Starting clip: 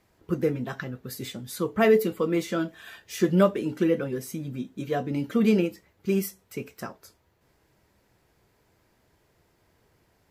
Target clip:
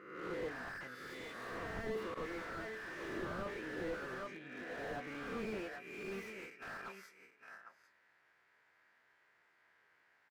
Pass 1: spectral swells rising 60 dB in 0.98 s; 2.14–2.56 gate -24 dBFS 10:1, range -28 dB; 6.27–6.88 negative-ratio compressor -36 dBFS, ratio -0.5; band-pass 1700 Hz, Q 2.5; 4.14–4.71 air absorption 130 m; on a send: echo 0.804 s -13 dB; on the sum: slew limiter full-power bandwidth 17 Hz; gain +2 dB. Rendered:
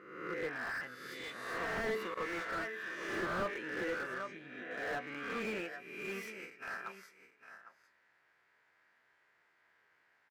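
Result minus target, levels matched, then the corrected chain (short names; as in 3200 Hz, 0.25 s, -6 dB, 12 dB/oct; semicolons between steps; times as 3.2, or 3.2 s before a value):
slew limiter: distortion -6 dB
spectral swells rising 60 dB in 0.98 s; 2.14–2.56 gate -24 dBFS 10:1, range -28 dB; 6.27–6.88 negative-ratio compressor -36 dBFS, ratio -0.5; band-pass 1700 Hz, Q 2.5; 4.14–4.71 air absorption 130 m; on a send: echo 0.804 s -13 dB; on the sum: slew limiter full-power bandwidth 6.5 Hz; gain +2 dB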